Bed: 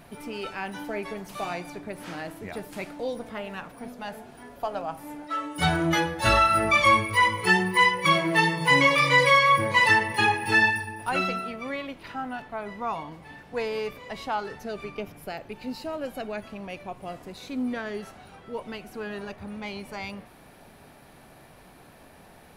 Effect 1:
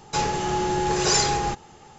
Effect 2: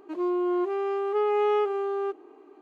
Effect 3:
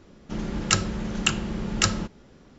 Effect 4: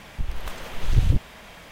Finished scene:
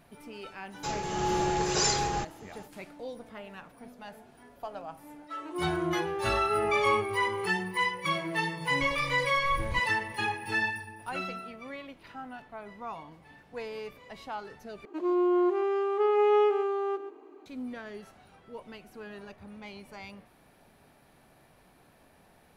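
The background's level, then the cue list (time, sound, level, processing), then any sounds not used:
bed -9 dB
0.70 s: add 1 -11 dB + level rider
5.36 s: add 2 -3.5 dB + high-pass 380 Hz
8.62 s: add 4 -16.5 dB
14.85 s: replace with 2 -0.5 dB + delay 132 ms -12 dB
not used: 3

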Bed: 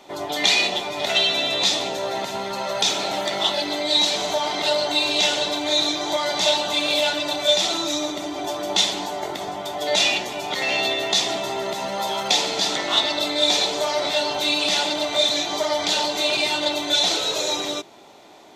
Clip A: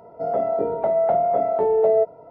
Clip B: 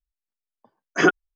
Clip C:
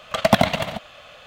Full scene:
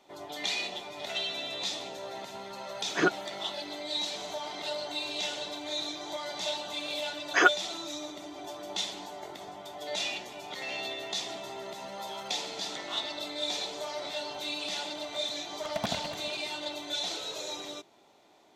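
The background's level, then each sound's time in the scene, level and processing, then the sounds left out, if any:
bed -14 dB
1.99 s: add B -8.5 dB
6.38 s: add B -1 dB + high-pass 600 Hz
15.51 s: add C -18 dB
not used: A

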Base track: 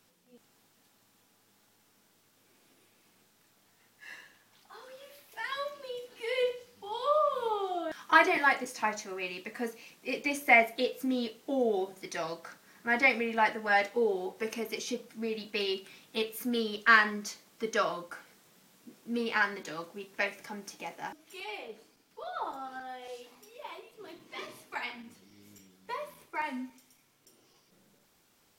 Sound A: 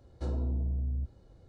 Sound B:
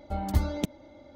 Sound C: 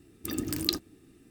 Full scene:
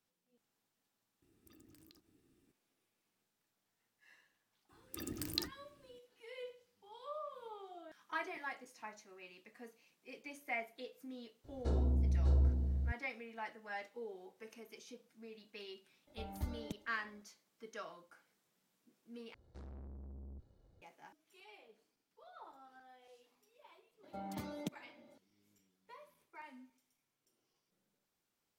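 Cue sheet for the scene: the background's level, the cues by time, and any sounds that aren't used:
base track -18.5 dB
1.22 s: add C -16 dB + compression 10:1, threshold -44 dBFS
4.69 s: add C -9.5 dB + bands offset in time highs, lows 30 ms, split 260 Hz
11.44 s: add A -1 dB + delay 598 ms -3.5 dB
16.07 s: add B -16 dB
19.34 s: replace with A -8 dB + valve stage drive 41 dB, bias 0.6
24.03 s: add B -11.5 dB + high-pass 140 Hz 24 dB/octave

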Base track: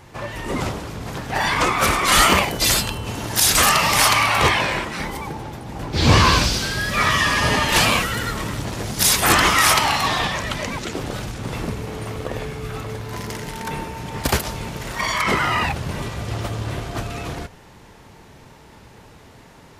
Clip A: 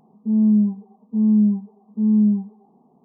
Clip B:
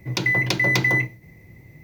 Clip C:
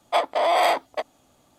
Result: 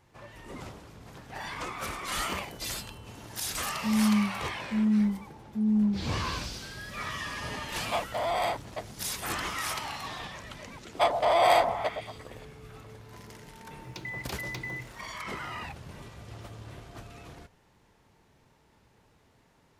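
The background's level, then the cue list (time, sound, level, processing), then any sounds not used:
base track -18 dB
3.58 s: add A -8.5 dB
7.79 s: add C -9.5 dB
10.87 s: add C -3 dB + repeats whose band climbs or falls 116 ms, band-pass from 610 Hz, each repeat 0.7 oct, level -6 dB
13.79 s: add B -18 dB

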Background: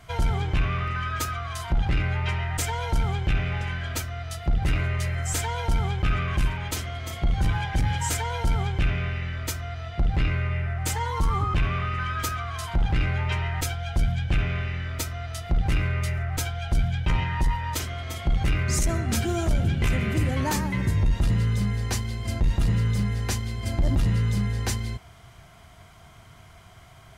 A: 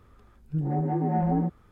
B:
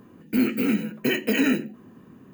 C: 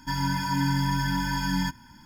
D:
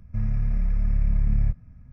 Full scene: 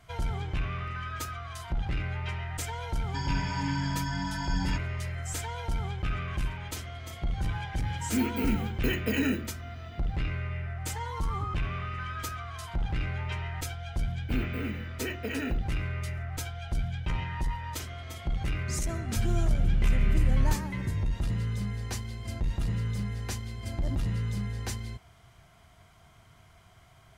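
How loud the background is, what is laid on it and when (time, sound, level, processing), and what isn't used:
background -7.5 dB
3.07 s: add C -6 dB + Chebyshev low-pass 8.1 kHz, order 5
7.79 s: add B -6.5 dB
13.96 s: add B -9.5 dB + tone controls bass -8 dB, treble -9 dB
19.02 s: add D -2.5 dB
not used: A

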